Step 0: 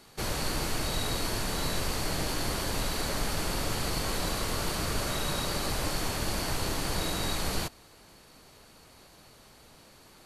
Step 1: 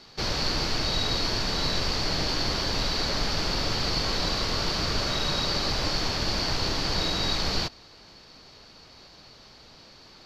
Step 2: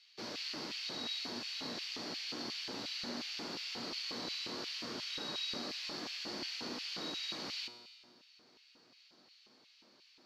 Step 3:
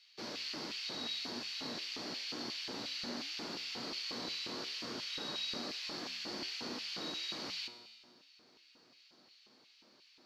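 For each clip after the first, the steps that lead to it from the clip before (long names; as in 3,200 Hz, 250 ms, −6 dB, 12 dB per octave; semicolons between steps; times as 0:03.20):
high shelf with overshoot 7,000 Hz −13 dB, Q 3; level +2.5 dB
tuned comb filter 120 Hz, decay 1.5 s, mix 80%; auto-filter high-pass square 2.8 Hz 250–2,600 Hz; level −3 dB
flanger 1.2 Hz, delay 7.3 ms, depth 9.1 ms, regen −83%; level +4.5 dB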